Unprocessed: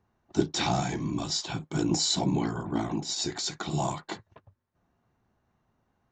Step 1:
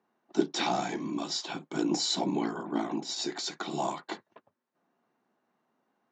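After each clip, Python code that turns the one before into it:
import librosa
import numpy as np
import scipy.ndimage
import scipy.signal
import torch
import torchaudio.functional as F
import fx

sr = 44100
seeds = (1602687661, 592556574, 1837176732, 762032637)

y = scipy.signal.sosfilt(scipy.signal.butter(4, 220.0, 'highpass', fs=sr, output='sos'), x)
y = fx.air_absorb(y, sr, metres=67.0)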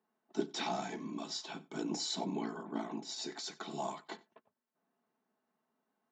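y = x + 0.39 * np.pad(x, (int(4.6 * sr / 1000.0), 0))[:len(x)]
y = y + 10.0 ** (-22.5 / 20.0) * np.pad(y, (int(92 * sr / 1000.0), 0))[:len(y)]
y = y * 10.0 ** (-8.0 / 20.0)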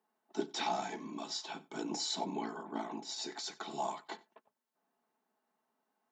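y = fx.highpass(x, sr, hz=290.0, slope=6)
y = fx.peak_eq(y, sr, hz=850.0, db=4.5, octaves=0.25)
y = y * 10.0 ** (1.0 / 20.0)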